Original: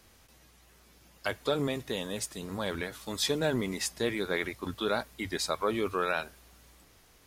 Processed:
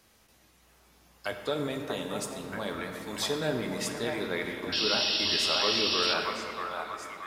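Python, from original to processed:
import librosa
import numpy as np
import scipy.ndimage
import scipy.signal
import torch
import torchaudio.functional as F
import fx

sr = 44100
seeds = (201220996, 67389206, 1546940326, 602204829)

y = fx.low_shelf(x, sr, hz=66.0, db=-10.5)
y = fx.echo_stepped(y, sr, ms=634, hz=920.0, octaves=0.7, feedback_pct=70, wet_db=0)
y = fx.spec_paint(y, sr, seeds[0], shape='noise', start_s=4.72, length_s=1.42, low_hz=2500.0, high_hz=5700.0, level_db=-27.0)
y = fx.room_shoebox(y, sr, seeds[1], volume_m3=200.0, walls='hard', distance_m=0.31)
y = F.gain(torch.from_numpy(y), -2.5).numpy()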